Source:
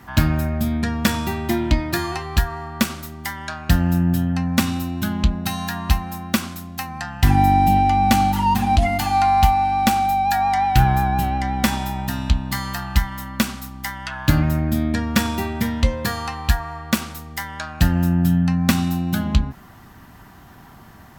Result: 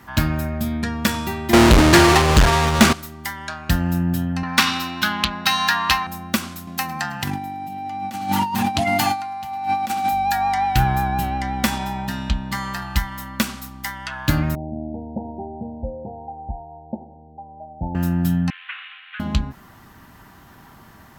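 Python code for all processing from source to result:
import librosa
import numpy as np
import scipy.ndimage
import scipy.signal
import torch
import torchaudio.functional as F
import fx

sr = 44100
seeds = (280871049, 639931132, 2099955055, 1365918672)

y = fx.chain(x, sr, fx.halfwave_hold(),
    fx.bessel_lowpass(hz=7600.0, order=2),
    fx.leveller(passes=3), at=(1.53, 2.93))
y = fx.chain(y, sr, fx.highpass(hz=240.0, slope=6),
    fx.band_shelf(hz=2200.0, db=12.0, octaves=3.0),
    fx.overload_stage(gain_db=7.5), at=(4.43, 6.07))
y = fx.chain(y, sr, fx.highpass(hz=110.0, slope=24),
    fx.echo_feedback(ms=106, feedback_pct=59, wet_db=-19.0),
    fx.over_compress(threshold_db=-21.0, ratio=-0.5), at=(6.67, 10.12))
y = fx.chain(y, sr, fx.high_shelf(hz=8800.0, db=-10.5),
    fx.comb(ms=5.2, depth=0.38), at=(11.78, 12.82))
y = fx.chain(y, sr, fx.cheby1_lowpass(hz=890.0, order=10),
    fx.tilt_shelf(db=-8.5, hz=670.0), at=(14.55, 17.95))
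y = fx.chain(y, sr, fx.cvsd(bps=16000),
    fx.cheby2_highpass(hz=550.0, order=4, stop_db=50),
    fx.tilt_eq(slope=2.0), at=(18.5, 19.2))
y = fx.low_shelf(y, sr, hz=220.0, db=-4.0)
y = fx.notch(y, sr, hz=730.0, q=14.0)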